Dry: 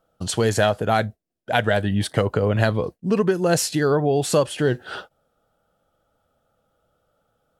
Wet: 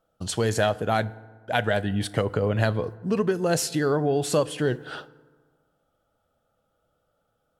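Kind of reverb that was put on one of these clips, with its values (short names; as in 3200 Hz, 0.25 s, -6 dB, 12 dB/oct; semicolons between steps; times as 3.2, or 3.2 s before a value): FDN reverb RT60 1.5 s, low-frequency decay 1.1×, high-frequency decay 0.5×, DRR 17.5 dB; gain -4 dB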